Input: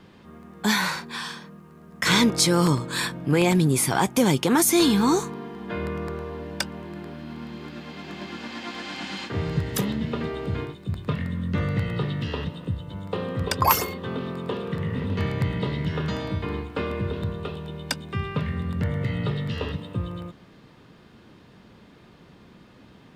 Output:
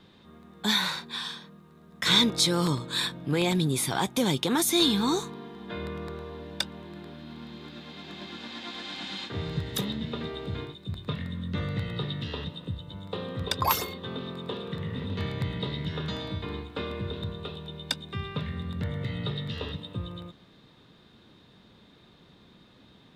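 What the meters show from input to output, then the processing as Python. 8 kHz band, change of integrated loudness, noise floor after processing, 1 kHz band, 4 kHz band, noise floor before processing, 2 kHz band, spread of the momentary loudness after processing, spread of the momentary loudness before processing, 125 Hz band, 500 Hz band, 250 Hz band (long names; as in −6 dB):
−6.0 dB, −4.0 dB, −57 dBFS, −6.0 dB, +1.5 dB, −51 dBFS, −5.5 dB, 17 LU, 16 LU, −6.0 dB, −6.0 dB, −6.0 dB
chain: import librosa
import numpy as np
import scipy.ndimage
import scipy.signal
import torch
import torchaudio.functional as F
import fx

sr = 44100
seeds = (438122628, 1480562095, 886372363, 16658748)

y = fx.peak_eq(x, sr, hz=3700.0, db=13.5, octaves=0.26)
y = y * librosa.db_to_amplitude(-6.0)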